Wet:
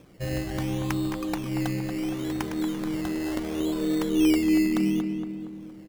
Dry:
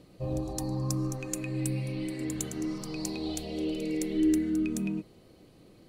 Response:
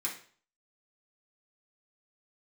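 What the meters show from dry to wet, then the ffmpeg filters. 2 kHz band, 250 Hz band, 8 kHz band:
+8.5 dB, +6.0 dB, -3.0 dB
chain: -filter_complex "[0:a]acrusher=samples=15:mix=1:aa=0.000001:lfo=1:lforange=9:lforate=0.71,asplit=2[a][b];[b]adelay=233,lowpass=f=2.2k:p=1,volume=-6dB,asplit=2[c][d];[d]adelay=233,lowpass=f=2.2k:p=1,volume=0.54,asplit=2[e][f];[f]adelay=233,lowpass=f=2.2k:p=1,volume=0.54,asplit=2[g][h];[h]adelay=233,lowpass=f=2.2k:p=1,volume=0.54,asplit=2[i][j];[j]adelay=233,lowpass=f=2.2k:p=1,volume=0.54,asplit=2[k][l];[l]adelay=233,lowpass=f=2.2k:p=1,volume=0.54,asplit=2[m][n];[n]adelay=233,lowpass=f=2.2k:p=1,volume=0.54[o];[c][e][g][i][k][m][o]amix=inputs=7:normalize=0[p];[a][p]amix=inputs=2:normalize=0,volume=2.5dB"

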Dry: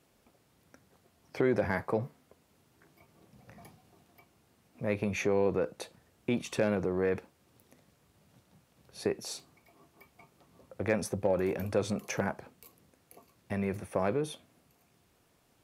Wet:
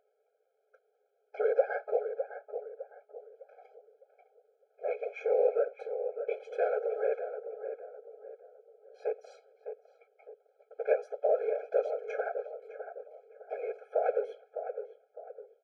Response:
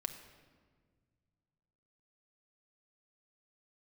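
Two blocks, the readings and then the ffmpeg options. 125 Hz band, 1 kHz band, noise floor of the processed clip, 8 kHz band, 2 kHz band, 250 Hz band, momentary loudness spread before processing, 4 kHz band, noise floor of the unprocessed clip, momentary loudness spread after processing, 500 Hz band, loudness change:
under -40 dB, +1.0 dB, -76 dBFS, under -25 dB, -5.0 dB, under -20 dB, 12 LU, under -15 dB, -69 dBFS, 20 LU, +2.0 dB, -1.0 dB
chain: -filter_complex "[0:a]highpass=160,agate=range=-12dB:threshold=-58dB:ratio=16:detection=peak,lowpass=1.6k,lowshelf=f=260:g=11.5,aeval=exprs='val(0)+0.00708*(sin(2*PI*50*n/s)+sin(2*PI*2*50*n/s)/2+sin(2*PI*3*50*n/s)/3+sin(2*PI*4*50*n/s)/4+sin(2*PI*5*50*n/s)/5)':c=same,afftfilt=real='hypot(re,im)*cos(2*PI*random(0))':imag='hypot(re,im)*sin(2*PI*random(1))':win_size=512:overlap=0.75,asplit=2[a][b];[b]adelay=607,lowpass=f=1.2k:p=1,volume=-8dB,asplit=2[c][d];[d]adelay=607,lowpass=f=1.2k:p=1,volume=0.4,asplit=2[e][f];[f]adelay=607,lowpass=f=1.2k:p=1,volume=0.4,asplit=2[g][h];[h]adelay=607,lowpass=f=1.2k:p=1,volume=0.4,asplit=2[i][j];[j]adelay=607,lowpass=f=1.2k:p=1,volume=0.4[k];[c][e][g][i][k]amix=inputs=5:normalize=0[l];[a][l]amix=inputs=2:normalize=0,afftfilt=real='re*eq(mod(floor(b*sr/1024/430),2),1)':imag='im*eq(mod(floor(b*sr/1024/430),2),1)':win_size=1024:overlap=0.75,volume=6.5dB"

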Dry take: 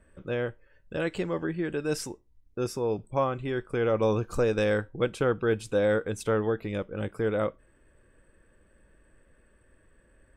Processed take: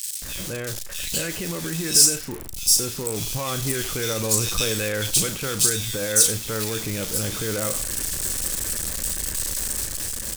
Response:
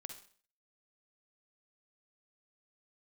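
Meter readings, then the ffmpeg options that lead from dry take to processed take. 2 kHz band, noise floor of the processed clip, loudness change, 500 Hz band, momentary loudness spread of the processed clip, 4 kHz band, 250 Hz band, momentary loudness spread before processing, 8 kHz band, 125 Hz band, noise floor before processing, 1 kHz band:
+4.5 dB, -33 dBFS, +7.0 dB, -3.5 dB, 11 LU, +19.5 dB, +0.5 dB, 9 LU, +28.0 dB, +4.0 dB, -63 dBFS, -0.5 dB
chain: -filter_complex "[0:a]aeval=exprs='val(0)+0.5*0.0168*sgn(val(0))':c=same,acrossover=split=1900[a][b];[a]alimiter=level_in=2dB:limit=-24dB:level=0:latency=1,volume=-2dB[c];[b]acontrast=81[d];[c][d]amix=inputs=2:normalize=0,bass=f=250:g=5,treble=f=4k:g=14,acrossover=split=2500[e][f];[e]adelay=220[g];[g][f]amix=inputs=2:normalize=0,dynaudnorm=f=230:g=9:m=3dB,asplit=2[h][i];[i]equalizer=f=7.5k:w=0.32:g=9.5[j];[1:a]atrim=start_sample=2205,atrim=end_sample=3087,adelay=36[k];[j][k]afir=irnorm=-1:irlink=0,volume=-8.5dB[l];[h][l]amix=inputs=2:normalize=0"

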